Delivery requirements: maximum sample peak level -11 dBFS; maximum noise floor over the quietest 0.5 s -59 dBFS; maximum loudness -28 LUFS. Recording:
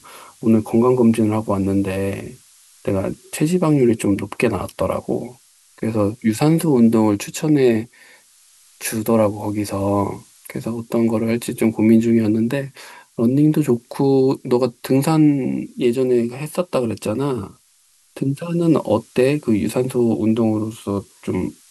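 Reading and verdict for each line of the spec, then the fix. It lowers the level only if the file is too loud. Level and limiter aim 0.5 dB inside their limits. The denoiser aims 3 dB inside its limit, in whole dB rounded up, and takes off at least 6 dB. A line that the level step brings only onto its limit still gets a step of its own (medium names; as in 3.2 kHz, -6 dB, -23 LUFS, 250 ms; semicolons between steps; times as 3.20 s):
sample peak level -3.5 dBFS: fail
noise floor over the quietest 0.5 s -57 dBFS: fail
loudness -19.0 LUFS: fail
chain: trim -9.5 dB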